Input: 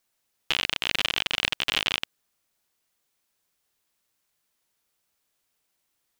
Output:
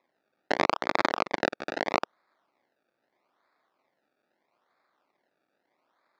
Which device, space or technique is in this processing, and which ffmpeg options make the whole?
circuit-bent sampling toy: -filter_complex "[0:a]asettb=1/sr,asplit=3[link_01][link_02][link_03];[link_01]atrim=end=1.094[link_04];[link_02]atrim=start=1.09:end=1.95,asetpts=PTS-STARTPTS,afade=type=in:duration=0.004:curve=qsin,afade=type=out:start_time=0.856:duration=0.004:curve=qsin,equalizer=frequency=250:width_type=o:width=1:gain=5,equalizer=frequency=500:width_type=o:width=1:gain=7,equalizer=frequency=2000:width_type=o:width=1:gain=-6,equalizer=frequency=4000:width_type=o:width=1:gain=-3,equalizer=frequency=16000:width_type=o:width=1:gain=-10[link_05];[link_03]atrim=start=1.946[link_06];[link_04][link_05]acrossfade=duration=0.004:curve1=hsin:curve2=qsin[link_07];[link_07][link_06]acrossfade=duration=0.004:curve1=qsin:curve2=hsin,acrusher=samples=29:mix=1:aa=0.000001:lfo=1:lforange=29:lforate=0.78,highpass=400,equalizer=frequency=450:width_type=q:width=4:gain=-6,equalizer=frequency=1200:width_type=q:width=4:gain=3,equalizer=frequency=2100:width_type=q:width=4:gain=4,equalizer=frequency=3000:width_type=q:width=4:gain=-7,lowpass=frequency=4800:width=0.5412,lowpass=frequency=4800:width=1.3066,volume=4dB"

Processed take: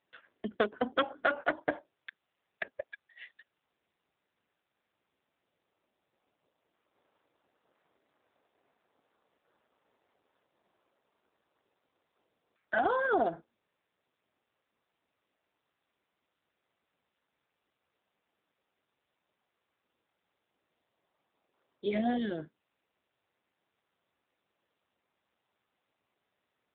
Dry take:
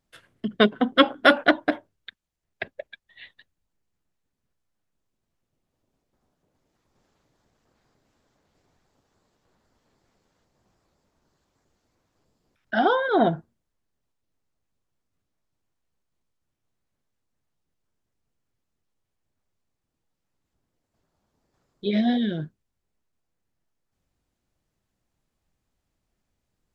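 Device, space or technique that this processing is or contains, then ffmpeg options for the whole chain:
voicemail: -filter_complex "[0:a]asplit=3[link_01][link_02][link_03];[link_01]afade=type=out:start_time=12.78:duration=0.02[link_04];[link_02]lowpass=5900,afade=type=in:start_time=12.78:duration=0.02,afade=type=out:start_time=13.31:duration=0.02[link_05];[link_03]afade=type=in:start_time=13.31:duration=0.02[link_06];[link_04][link_05][link_06]amix=inputs=3:normalize=0,highpass=380,lowpass=2900,acompressor=threshold=-24dB:ratio=6" -ar 8000 -c:a libopencore_amrnb -b:a 7400

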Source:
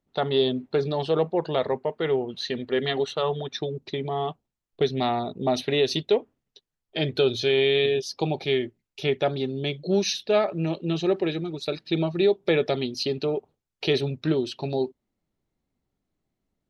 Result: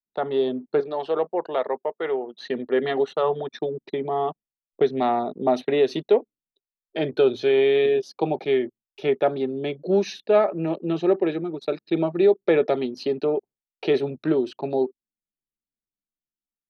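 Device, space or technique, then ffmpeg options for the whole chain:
voice memo with heavy noise removal: -filter_complex "[0:a]asettb=1/sr,asplit=3[link_01][link_02][link_03];[link_01]atrim=end=0.804[link_04];[link_02]atrim=start=0.8:end=2.4,asetpts=PTS-STARTPTS,afade=type=in:duration=0.004:curve=qsin,afade=type=out:start_time=1.596:duration=0.004:curve=qsin,highpass=frequency=620:poles=1[link_05];[link_03]atrim=start=2.396[link_06];[link_04][link_05]acrossfade=duration=0.004:curve1=hsin:curve2=qsin[link_07];[link_07][link_06]acrossfade=duration=0.004:curve1=qsin:curve2=hsin,anlmdn=0.251,dynaudnorm=framelen=120:gausssize=11:maxgain=4dB,acrossover=split=190 2000:gain=0.0891 1 0.178[link_08][link_09][link_10];[link_08][link_09][link_10]amix=inputs=3:normalize=0"

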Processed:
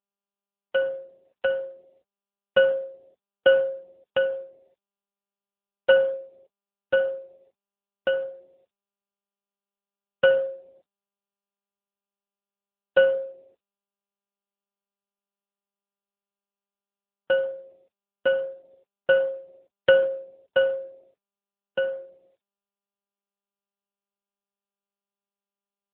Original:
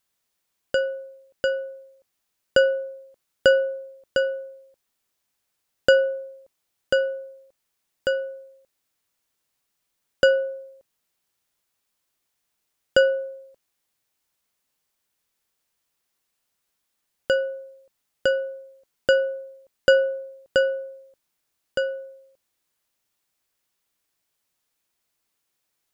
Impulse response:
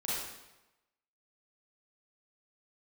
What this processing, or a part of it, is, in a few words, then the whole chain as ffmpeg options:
mobile call with aggressive noise cancelling: -af "highpass=frequency=130:width=0.5412,highpass=frequency=130:width=1.3066,afftdn=noise_reduction=27:noise_floor=-49" -ar 8000 -c:a libopencore_amrnb -b:a 10200

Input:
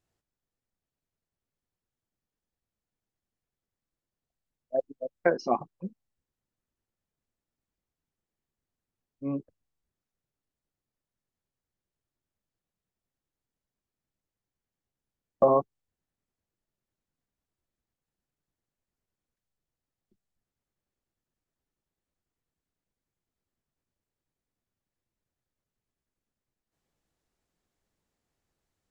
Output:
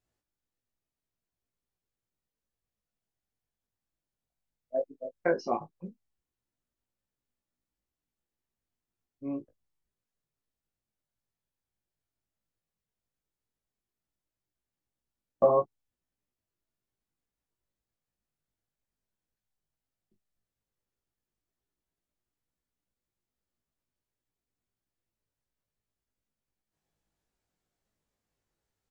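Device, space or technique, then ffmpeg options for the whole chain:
double-tracked vocal: -filter_complex "[0:a]asplit=2[link_01][link_02];[link_02]adelay=20,volume=-11dB[link_03];[link_01][link_03]amix=inputs=2:normalize=0,flanger=delay=16.5:depth=2.3:speed=0.13"

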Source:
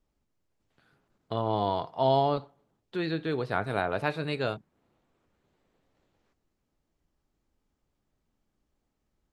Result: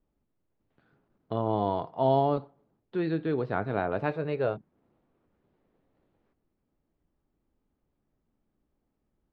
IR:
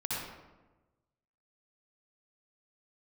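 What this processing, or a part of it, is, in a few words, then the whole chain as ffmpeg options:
phone in a pocket: -filter_complex "[0:a]asettb=1/sr,asplit=3[link_01][link_02][link_03];[link_01]atrim=end=4.114[link_04];[link_02]atrim=start=4.11:end=4.55,asetpts=PTS-STARTPTS,afade=type=in:duration=0.004:curve=qsin,afade=type=out:start_time=0.436:duration=0.004:curve=qsin,equalizer=frequency=250:width_type=o:width=1:gain=-7,equalizer=frequency=500:width_type=o:width=1:gain=5,equalizer=frequency=4000:width_type=o:width=1:gain=-5[link_05];[link_03]atrim=start=4.546[link_06];[link_04][link_05]acrossfade=duration=0.004:curve1=hsin:curve2=qsin[link_07];[link_07][link_06]acrossfade=duration=0.004:curve1=qsin:curve2=hsin,lowpass=4000,equalizer=frequency=270:width_type=o:width=2.1:gain=4,highshelf=frequency=2300:gain=-8.5,volume=-1dB"

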